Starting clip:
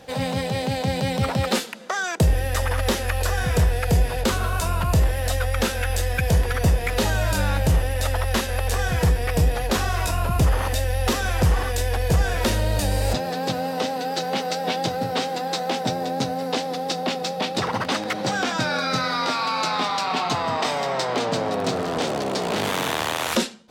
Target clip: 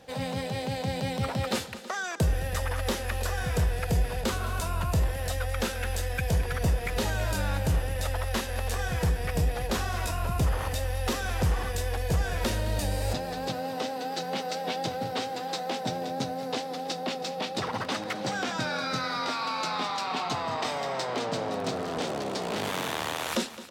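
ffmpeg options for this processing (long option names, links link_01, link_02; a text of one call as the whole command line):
ffmpeg -i in.wav -af "aecho=1:1:214|323:0.168|0.133,volume=-7dB" out.wav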